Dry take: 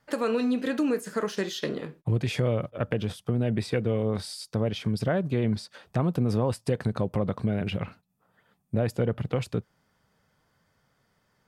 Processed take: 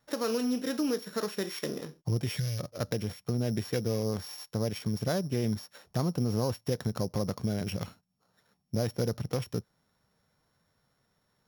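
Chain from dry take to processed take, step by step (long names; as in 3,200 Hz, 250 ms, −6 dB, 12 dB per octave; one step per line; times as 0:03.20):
samples sorted by size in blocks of 8 samples
gain on a spectral selection 0:02.37–0:02.59, 210–1,400 Hz −17 dB
level −4 dB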